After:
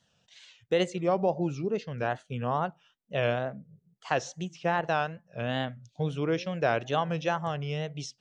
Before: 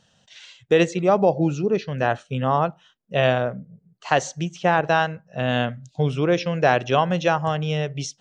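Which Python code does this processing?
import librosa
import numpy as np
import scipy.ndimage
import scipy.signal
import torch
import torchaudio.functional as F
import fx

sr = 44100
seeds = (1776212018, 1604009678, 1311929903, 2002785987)

y = fx.wow_flutter(x, sr, seeds[0], rate_hz=2.1, depth_cents=130.0)
y = F.gain(torch.from_numpy(y), -8.5).numpy()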